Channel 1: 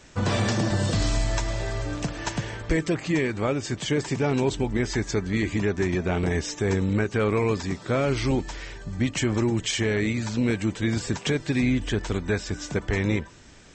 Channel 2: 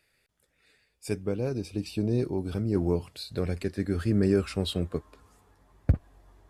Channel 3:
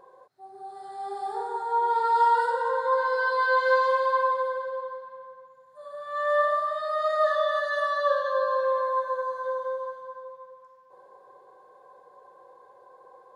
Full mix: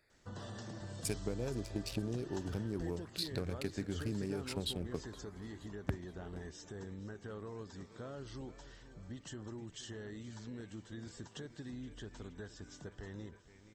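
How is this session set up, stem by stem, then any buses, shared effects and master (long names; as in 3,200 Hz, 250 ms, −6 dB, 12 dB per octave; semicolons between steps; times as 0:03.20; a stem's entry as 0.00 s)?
−18.5 dB, 0.10 s, bus A, no send, echo send −19.5 dB, no processing
0.0 dB, 0.00 s, no bus, no send, echo send −22 dB, adaptive Wiener filter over 15 samples; high-shelf EQ 2,400 Hz +12 dB; downward compressor 16 to 1, threshold −34 dBFS, peak gain reduction 19 dB
muted
bus A: 0.0 dB, Butterworth band-reject 2,300 Hz, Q 2.7; downward compressor 2 to 1, threshold −46 dBFS, peak gain reduction 5.5 dB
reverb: not used
echo: repeating echo 471 ms, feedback 55%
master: no processing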